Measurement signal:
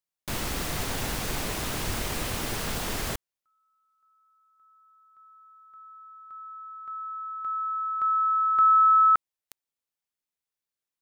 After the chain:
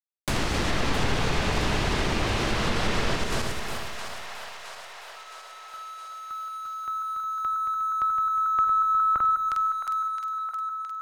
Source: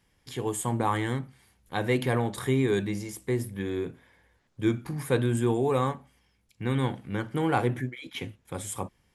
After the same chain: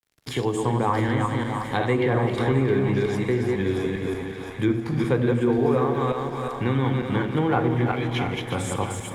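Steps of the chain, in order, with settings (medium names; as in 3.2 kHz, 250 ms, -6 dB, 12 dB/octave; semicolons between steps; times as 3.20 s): backward echo that repeats 180 ms, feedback 51%, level -3 dB; low-pass that closes with the level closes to 1.7 kHz, closed at -19.5 dBFS; in parallel at +1 dB: compression, threshold -32 dBFS; on the sum: crossover distortion -55 dBFS; on a send: two-band feedback delay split 630 Hz, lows 83 ms, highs 666 ms, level -10.5 dB; on the sum: Schroeder reverb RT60 2.3 s, combs from 29 ms, DRR 13.5 dB; three bands compressed up and down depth 40%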